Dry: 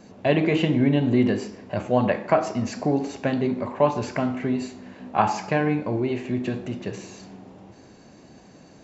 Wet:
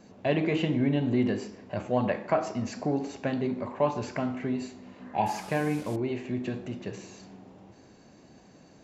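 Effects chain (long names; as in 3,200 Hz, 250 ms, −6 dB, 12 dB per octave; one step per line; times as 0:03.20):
0:05.26–0:05.96: linear delta modulator 64 kbit/s, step −34 dBFS
0:04.82–0:05.35: healed spectral selection 1,000–2,100 Hz both
in parallel at −11 dB: soft clipping −14.5 dBFS, distortion −15 dB
on the sum: level −7.5 dB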